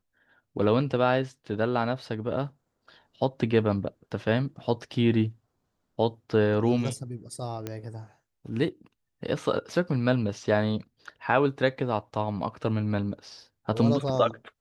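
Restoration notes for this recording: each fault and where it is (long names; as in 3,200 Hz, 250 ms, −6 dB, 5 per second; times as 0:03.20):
0:07.67: click −18 dBFS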